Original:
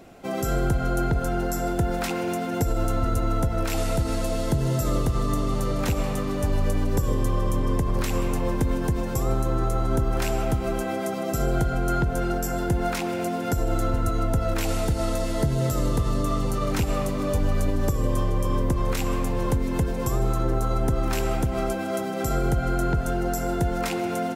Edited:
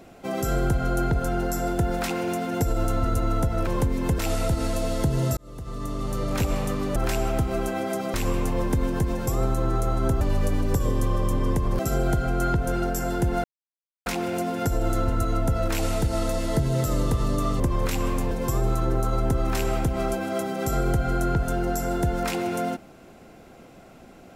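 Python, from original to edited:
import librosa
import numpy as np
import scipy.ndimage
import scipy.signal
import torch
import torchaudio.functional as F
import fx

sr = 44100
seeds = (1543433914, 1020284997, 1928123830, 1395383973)

y = fx.edit(x, sr, fx.fade_in_span(start_s=4.85, length_s=1.05),
    fx.swap(start_s=6.44, length_s=1.58, other_s=10.09, other_length_s=1.18),
    fx.insert_silence(at_s=12.92, length_s=0.62),
    fx.cut(start_s=16.46, length_s=2.2),
    fx.move(start_s=19.37, length_s=0.52, to_s=3.67), tone=tone)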